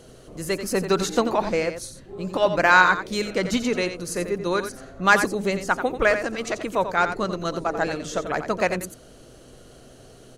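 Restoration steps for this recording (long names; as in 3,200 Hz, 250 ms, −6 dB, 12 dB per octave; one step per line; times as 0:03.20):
hum removal 126.8 Hz, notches 5
echo removal 88 ms −9.5 dB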